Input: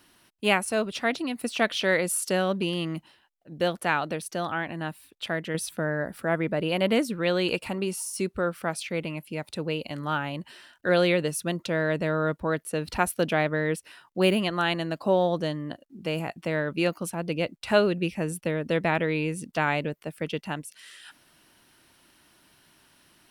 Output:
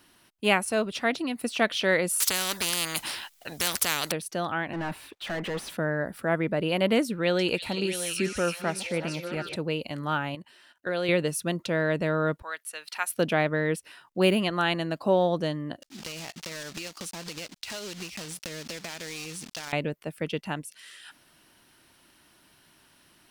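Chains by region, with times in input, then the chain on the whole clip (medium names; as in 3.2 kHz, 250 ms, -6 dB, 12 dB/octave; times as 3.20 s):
2.20–4.12 s: tilt shelf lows -8 dB, about 1.3 kHz + spectrum-flattening compressor 4:1
4.73–5.77 s: compression 3:1, threshold -33 dBFS + overdrive pedal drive 31 dB, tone 1.7 kHz, clips at -23.5 dBFS + three bands expanded up and down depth 70%
7.06–9.56 s: chunks repeated in reverse 602 ms, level -12 dB + band-stop 1.1 kHz, Q 11 + repeats whose band climbs or falls 328 ms, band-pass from 4.9 kHz, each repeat -0.7 oct, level -1 dB
10.35–11.09 s: high-pass 170 Hz 6 dB/octave + level held to a coarse grid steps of 14 dB
12.42–13.10 s: de-esser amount 25% + high-pass 1.4 kHz
15.82–19.73 s: block-companded coder 3-bit + peaking EQ 5.2 kHz +15 dB 2.3 oct + compression 8:1, threshold -34 dBFS
whole clip: none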